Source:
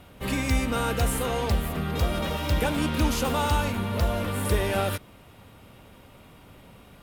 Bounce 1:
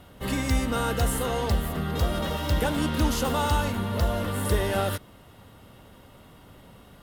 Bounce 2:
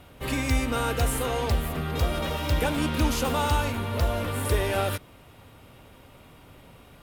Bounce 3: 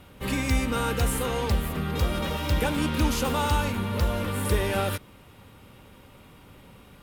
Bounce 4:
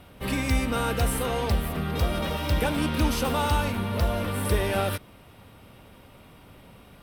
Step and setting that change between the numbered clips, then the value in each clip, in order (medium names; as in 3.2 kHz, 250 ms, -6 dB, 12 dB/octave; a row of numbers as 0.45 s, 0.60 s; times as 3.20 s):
band-stop, frequency: 2.4 kHz, 200 Hz, 670 Hz, 6.9 kHz